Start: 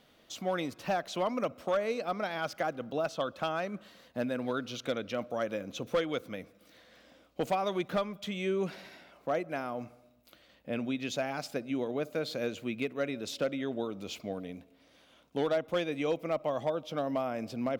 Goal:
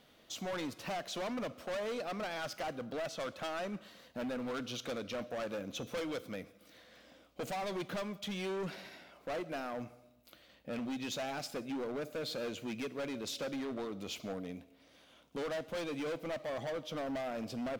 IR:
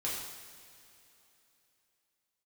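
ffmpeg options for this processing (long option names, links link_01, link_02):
-filter_complex "[0:a]volume=34.5dB,asoftclip=hard,volume=-34.5dB,asplit=2[link_01][link_02];[link_02]tiltshelf=frequency=1500:gain=-8.5[link_03];[1:a]atrim=start_sample=2205,afade=type=out:start_time=0.24:duration=0.01,atrim=end_sample=11025[link_04];[link_03][link_04]afir=irnorm=-1:irlink=0,volume=-21.5dB[link_05];[link_01][link_05]amix=inputs=2:normalize=0,volume=-1dB"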